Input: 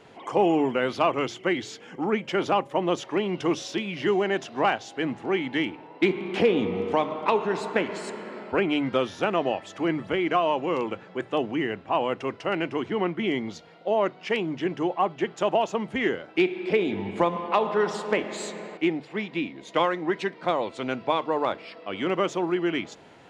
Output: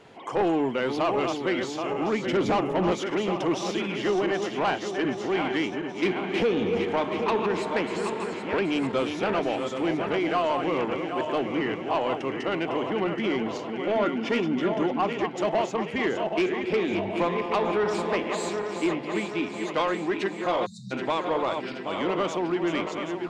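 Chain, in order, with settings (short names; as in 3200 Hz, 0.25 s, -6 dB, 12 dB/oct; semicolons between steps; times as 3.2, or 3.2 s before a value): regenerating reverse delay 0.388 s, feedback 74%, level -7.5 dB; 2.26–2.92 low shelf 320 Hz +10.5 dB; 20.66–20.92 spectral delete 230–3600 Hz; soft clip -17.5 dBFS, distortion -14 dB; 13.94–15.2 small resonant body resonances 250/1400/3500 Hz, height 14 dB, ringing for 95 ms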